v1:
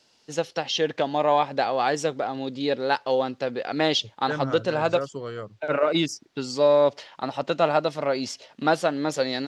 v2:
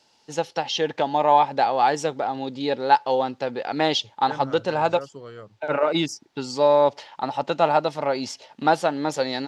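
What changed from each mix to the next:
first voice: add peaking EQ 860 Hz +10.5 dB 0.23 oct; second voice -6.0 dB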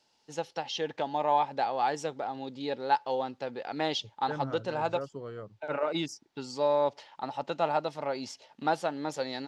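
first voice -9.0 dB; second voice: add treble shelf 2 kHz -11.5 dB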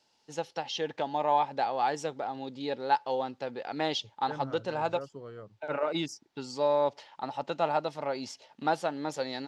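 second voice -3.5 dB

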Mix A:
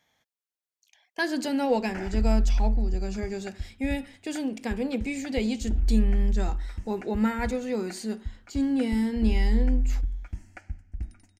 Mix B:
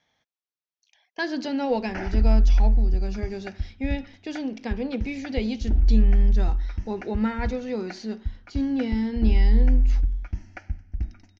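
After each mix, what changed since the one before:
background +5.5 dB; master: add Chebyshev low-pass 6 kHz, order 5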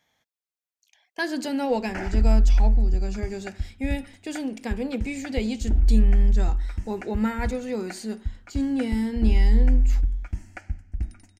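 master: remove Chebyshev low-pass 6 kHz, order 5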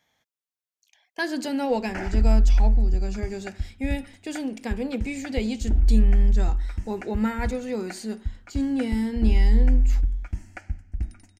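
no change

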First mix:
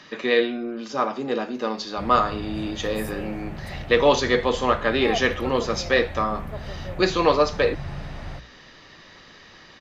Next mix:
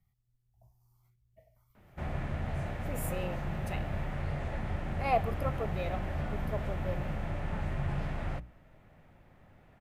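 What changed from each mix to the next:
first voice: muted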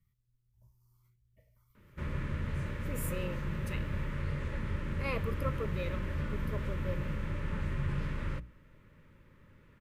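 master: add Butterworth band-stop 730 Hz, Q 1.9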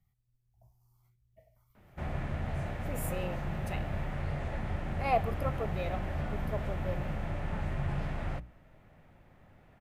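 master: remove Butterworth band-stop 730 Hz, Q 1.9

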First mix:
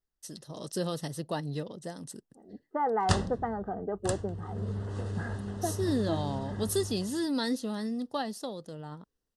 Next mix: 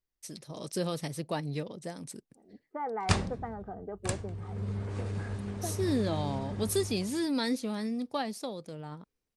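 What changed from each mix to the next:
second voice -6.5 dB; master: remove Butterworth band-stop 2.3 kHz, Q 3.7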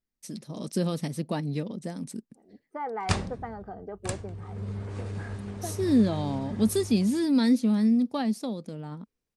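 first voice: add peaking EQ 220 Hz +12.5 dB 0.83 oct; second voice: remove distance through air 410 m

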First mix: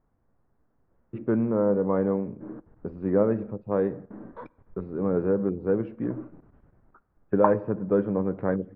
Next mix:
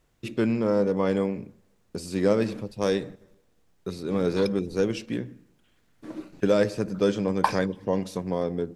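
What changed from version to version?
first voice: entry -0.90 s; master: remove low-pass 1.4 kHz 24 dB/octave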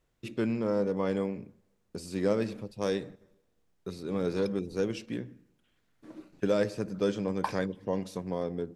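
first voice -5.5 dB; second voice -9.5 dB

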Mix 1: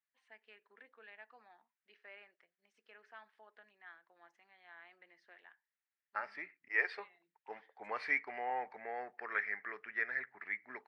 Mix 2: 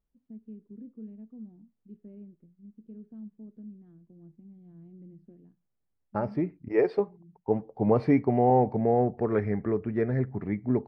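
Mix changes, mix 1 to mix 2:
first voice: add FFT filter 220 Hz 0 dB, 830 Hz -29 dB, 1.3 kHz -24 dB; master: remove resonant high-pass 1.8 kHz, resonance Q 2.9

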